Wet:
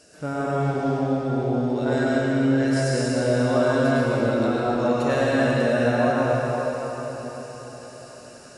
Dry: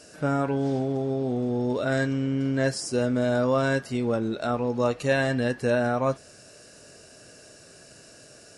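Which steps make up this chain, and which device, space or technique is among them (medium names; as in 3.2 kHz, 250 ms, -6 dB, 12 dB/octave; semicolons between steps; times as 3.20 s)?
cathedral (reverberation RT60 5.0 s, pre-delay 93 ms, DRR -7 dB); trim -4 dB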